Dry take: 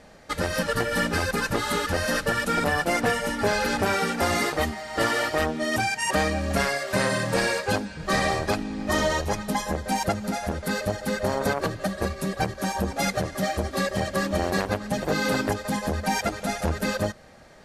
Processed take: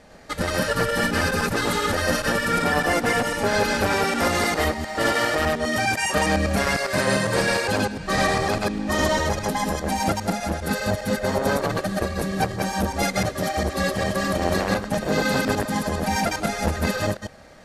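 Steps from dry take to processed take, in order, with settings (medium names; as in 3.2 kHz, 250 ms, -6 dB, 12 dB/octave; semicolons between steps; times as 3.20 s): chunks repeated in reverse 101 ms, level 0 dB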